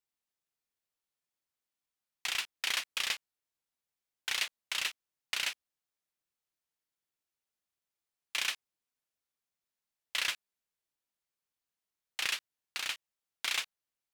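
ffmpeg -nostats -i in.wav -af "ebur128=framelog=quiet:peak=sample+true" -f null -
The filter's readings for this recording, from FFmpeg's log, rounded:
Integrated loudness:
  I:         -34.7 LUFS
  Threshold: -44.9 LUFS
Loudness range:
  LRA:         6.4 LU
  Threshold: -58.4 LUFS
  LRA low:   -42.0 LUFS
  LRA high:  -35.5 LUFS
Sample peak:
  Peak:      -17.1 dBFS
True peak:
  Peak:      -17.1 dBFS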